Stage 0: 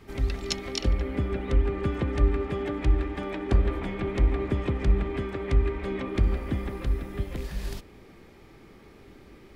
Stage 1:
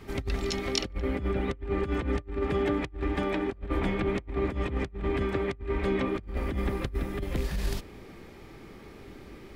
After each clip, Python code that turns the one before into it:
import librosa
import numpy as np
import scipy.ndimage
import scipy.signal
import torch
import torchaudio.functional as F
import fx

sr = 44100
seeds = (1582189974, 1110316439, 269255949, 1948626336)

y = fx.over_compress(x, sr, threshold_db=-29.0, ratio=-0.5)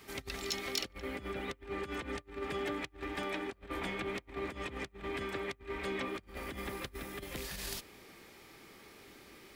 y = fx.tilt_eq(x, sr, slope=3.0)
y = 10.0 ** (-19.5 / 20.0) * np.tanh(y / 10.0 ** (-19.5 / 20.0))
y = y * librosa.db_to_amplitude(-5.5)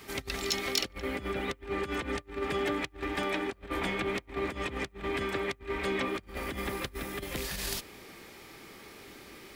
y = fx.attack_slew(x, sr, db_per_s=360.0)
y = y * librosa.db_to_amplitude(6.0)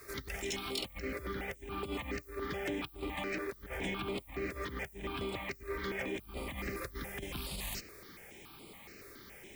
y = 10.0 ** (-25.0 / 20.0) * np.tanh(x / 10.0 ** (-25.0 / 20.0))
y = fx.dmg_noise_colour(y, sr, seeds[0], colour='violet', level_db=-57.0)
y = fx.phaser_held(y, sr, hz=7.1, low_hz=830.0, high_hz=6000.0)
y = y * librosa.db_to_amplitude(-1.5)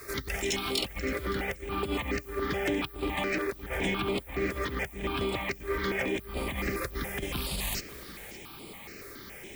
y = x + 10.0 ** (-17.5 / 20.0) * np.pad(x, (int(566 * sr / 1000.0), 0))[:len(x)]
y = y * librosa.db_to_amplitude(7.5)